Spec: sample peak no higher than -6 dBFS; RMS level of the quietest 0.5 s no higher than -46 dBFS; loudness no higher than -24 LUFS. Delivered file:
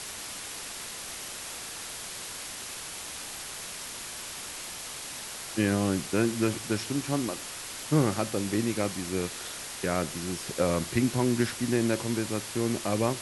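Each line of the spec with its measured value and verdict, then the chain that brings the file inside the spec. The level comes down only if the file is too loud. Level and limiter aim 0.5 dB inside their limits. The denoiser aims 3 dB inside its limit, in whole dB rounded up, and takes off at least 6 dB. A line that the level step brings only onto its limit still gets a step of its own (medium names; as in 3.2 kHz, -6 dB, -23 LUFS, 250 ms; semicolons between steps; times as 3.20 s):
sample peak -11.5 dBFS: pass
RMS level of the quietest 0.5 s -39 dBFS: fail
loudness -30.5 LUFS: pass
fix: noise reduction 10 dB, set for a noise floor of -39 dBFS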